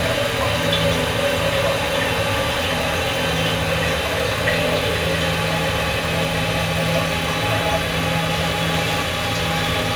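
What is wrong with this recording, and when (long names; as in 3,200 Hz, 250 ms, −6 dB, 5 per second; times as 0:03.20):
surface crackle 190 per second −24 dBFS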